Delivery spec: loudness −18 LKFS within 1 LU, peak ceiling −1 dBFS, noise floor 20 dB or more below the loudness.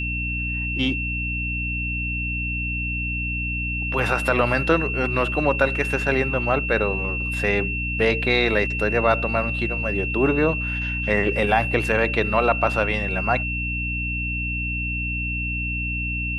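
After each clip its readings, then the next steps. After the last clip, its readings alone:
mains hum 60 Hz; hum harmonics up to 300 Hz; level of the hum −26 dBFS; interfering tone 2,700 Hz; level of the tone −26 dBFS; integrated loudness −22.0 LKFS; sample peak −4.5 dBFS; target loudness −18.0 LKFS
→ hum removal 60 Hz, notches 5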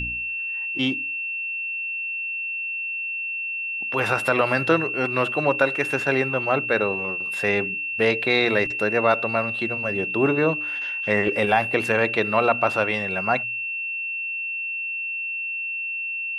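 mains hum none found; interfering tone 2,700 Hz; level of the tone −26 dBFS
→ notch filter 2,700 Hz, Q 30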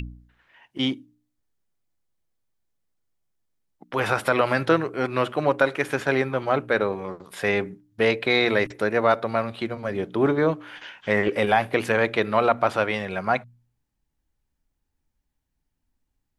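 interfering tone none found; integrated loudness −23.5 LKFS; sample peak −5.0 dBFS; target loudness −18.0 LKFS
→ level +5.5 dB
brickwall limiter −1 dBFS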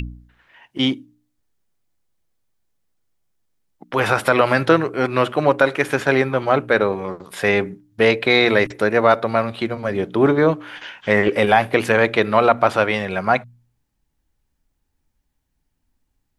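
integrated loudness −18.0 LKFS; sample peak −1.0 dBFS; background noise floor −72 dBFS

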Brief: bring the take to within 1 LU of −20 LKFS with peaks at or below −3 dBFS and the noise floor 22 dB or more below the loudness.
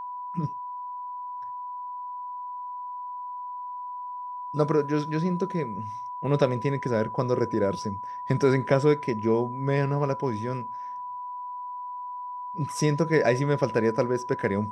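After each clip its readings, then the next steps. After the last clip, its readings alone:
interfering tone 990 Hz; level of the tone −33 dBFS; integrated loudness −28.0 LKFS; sample peak −7.5 dBFS; target loudness −20.0 LKFS
→ notch filter 990 Hz, Q 30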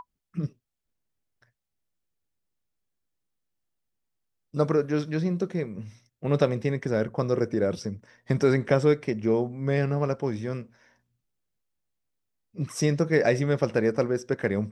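interfering tone none found; integrated loudness −26.5 LKFS; sample peak −8.0 dBFS; target loudness −20.0 LKFS
→ level +6.5 dB
brickwall limiter −3 dBFS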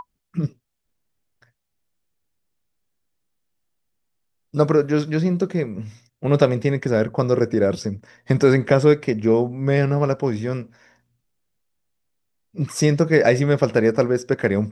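integrated loudness −20.0 LKFS; sample peak −3.0 dBFS; background noise floor −75 dBFS

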